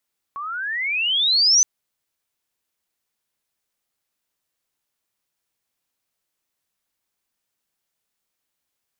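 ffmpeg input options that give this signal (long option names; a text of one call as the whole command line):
ffmpeg -f lavfi -i "aevalsrc='pow(10,(-27.5+16.5*t/1.27)/20)*sin(2*PI*1100*1.27/log(6200/1100)*(exp(log(6200/1100)*t/1.27)-1))':duration=1.27:sample_rate=44100" out.wav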